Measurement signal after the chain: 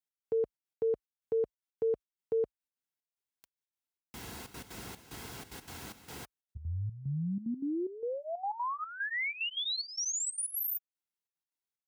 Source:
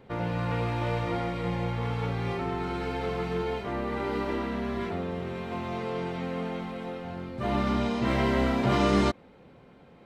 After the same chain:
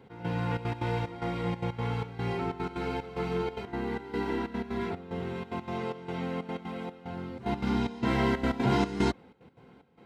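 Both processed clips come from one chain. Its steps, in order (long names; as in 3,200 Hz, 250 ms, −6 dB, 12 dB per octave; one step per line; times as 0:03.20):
high-pass filter 45 Hz 24 dB per octave
gate pattern "x..xxxx.x.xx" 185 BPM −12 dB
notch comb filter 600 Hz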